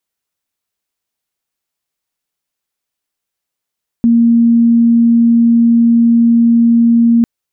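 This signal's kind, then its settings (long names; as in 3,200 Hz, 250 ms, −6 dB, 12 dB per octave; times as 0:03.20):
tone sine 233 Hz −5.5 dBFS 3.20 s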